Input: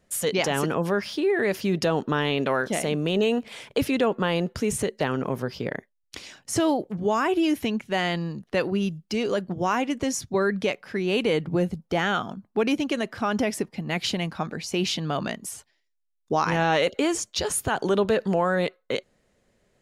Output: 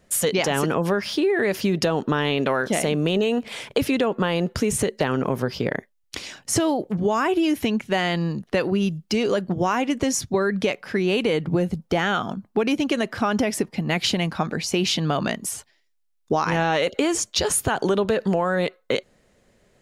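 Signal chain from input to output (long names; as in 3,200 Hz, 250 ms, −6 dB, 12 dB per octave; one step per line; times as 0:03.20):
downward compressor, threshold −24 dBFS, peak gain reduction 7 dB
level +6.5 dB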